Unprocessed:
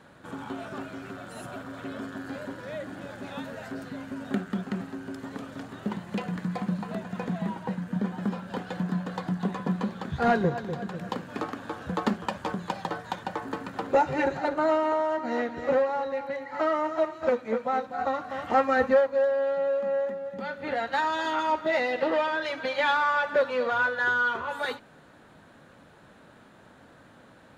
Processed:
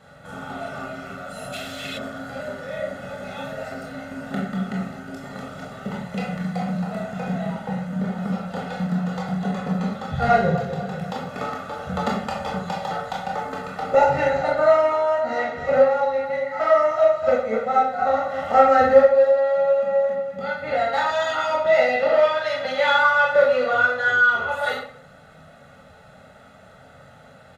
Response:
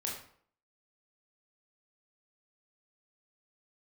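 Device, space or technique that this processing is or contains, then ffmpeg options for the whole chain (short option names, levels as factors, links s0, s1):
microphone above a desk: -filter_complex "[0:a]aecho=1:1:1.5:0.79[s0];[1:a]atrim=start_sample=2205[s1];[s0][s1]afir=irnorm=-1:irlink=0,asplit=3[s2][s3][s4];[s2]afade=t=out:st=1.52:d=0.02[s5];[s3]highshelf=f=1900:t=q:w=1.5:g=12.5,afade=t=in:st=1.52:d=0.02,afade=t=out:st=1.97:d=0.02[s6];[s4]afade=t=in:st=1.97:d=0.02[s7];[s5][s6][s7]amix=inputs=3:normalize=0,volume=1.26"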